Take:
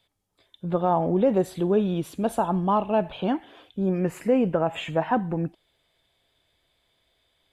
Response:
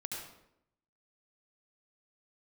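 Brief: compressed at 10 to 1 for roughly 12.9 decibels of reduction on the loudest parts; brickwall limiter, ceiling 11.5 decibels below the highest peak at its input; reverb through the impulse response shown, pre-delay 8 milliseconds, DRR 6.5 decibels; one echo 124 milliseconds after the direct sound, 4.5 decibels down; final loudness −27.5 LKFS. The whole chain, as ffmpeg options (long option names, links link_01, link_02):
-filter_complex "[0:a]acompressor=threshold=-30dB:ratio=10,alimiter=level_in=8.5dB:limit=-24dB:level=0:latency=1,volume=-8.5dB,aecho=1:1:124:0.596,asplit=2[link_01][link_02];[1:a]atrim=start_sample=2205,adelay=8[link_03];[link_02][link_03]afir=irnorm=-1:irlink=0,volume=-6.5dB[link_04];[link_01][link_04]amix=inputs=2:normalize=0,volume=11.5dB"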